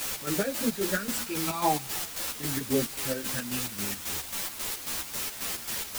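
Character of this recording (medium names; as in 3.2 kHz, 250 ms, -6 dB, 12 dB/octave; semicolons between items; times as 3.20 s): phasing stages 12, 0.44 Hz, lowest notch 500–1000 Hz; a quantiser's noise floor 6-bit, dither triangular; chopped level 3.7 Hz, depth 60%, duty 55%; a shimmering, thickened sound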